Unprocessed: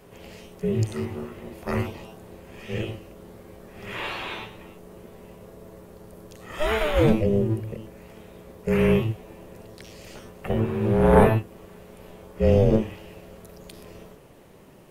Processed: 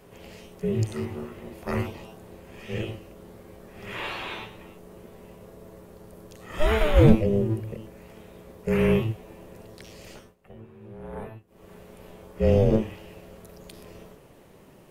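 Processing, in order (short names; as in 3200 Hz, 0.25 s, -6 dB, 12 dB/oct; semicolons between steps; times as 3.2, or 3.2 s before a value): 6.54–7.15 low shelf 260 Hz +9 dB; 10.11–11.72 dip -20.5 dB, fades 0.25 s; gain -1.5 dB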